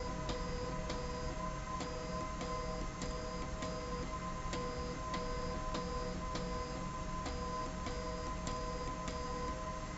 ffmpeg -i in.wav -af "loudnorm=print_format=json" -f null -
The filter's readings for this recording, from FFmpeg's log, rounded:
"input_i" : "-41.6",
"input_tp" : "-25.4",
"input_lra" : "0.5",
"input_thresh" : "-51.6",